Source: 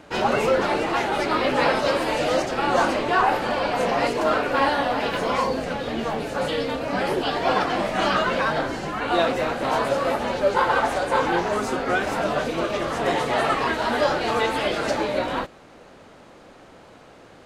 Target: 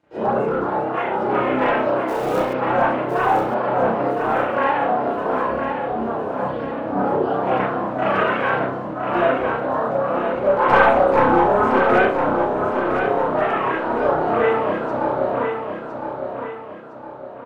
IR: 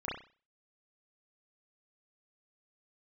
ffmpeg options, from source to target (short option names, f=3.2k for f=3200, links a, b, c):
-filter_complex "[0:a]highpass=f=75:p=1,afwtdn=0.0631,asplit=3[a][b][c];[a]afade=t=out:st=2.07:d=0.02[d];[b]acrusher=bits=2:mode=log:mix=0:aa=0.000001,afade=t=in:st=2.07:d=0.02,afade=t=out:st=2.52:d=0.02[e];[c]afade=t=in:st=2.52:d=0.02[f];[d][e][f]amix=inputs=3:normalize=0,asettb=1/sr,asplit=3[g][h][i];[g]atrim=end=8.144[j];[h]atrim=start=8.14:end=8.59,asetpts=PTS-STARTPTS,afade=t=in:d=0.004:c=qsin,afade=t=out:st=0.446:d=0.004:c=qsin,highshelf=f=2.4k:g=6.5[k];[i]atrim=start=8.586[l];[j][k]acrossfade=d=0.004:c1=hsin:c2=qsin[m];[m][l]acrossfade=d=0.004:c1=qsin:c2=hsin,asettb=1/sr,asplit=3[n][o][p];[n]atrim=end=10.684[q];[o]atrim=start=10.68:end=12.06,asetpts=PTS-STARTPTS,afade=t=in:d=0.004:c=qsin,afade=t=out:st=1.376:d=0.004:c=qsin,acontrast=57[r];[p]atrim=start=12.056[s];[q][r]acrossfade=d=0.004:c1=hsin:c2=qsin[t];[t][s]acrossfade=d=0.004:c1=qsin:c2=hsin,aeval=exprs='clip(val(0),-1,0.211)':c=same,aphaser=in_gain=1:out_gain=1:delay=3.1:decay=0.23:speed=0.28:type=sinusoidal,aecho=1:1:1010|2020|3030|4040|5050:0.473|0.199|0.0835|0.0351|0.0147[u];[1:a]atrim=start_sample=2205[v];[u][v]afir=irnorm=-1:irlink=0,volume=-3.5dB"